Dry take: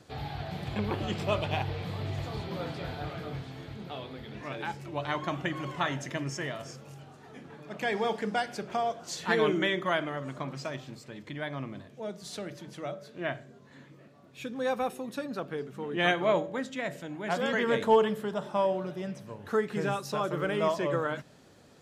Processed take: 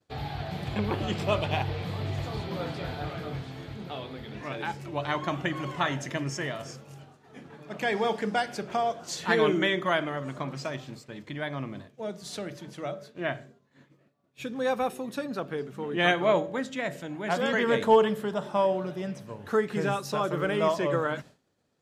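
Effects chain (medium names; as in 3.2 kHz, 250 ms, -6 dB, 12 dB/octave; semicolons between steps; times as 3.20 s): expander -44 dBFS; trim +2.5 dB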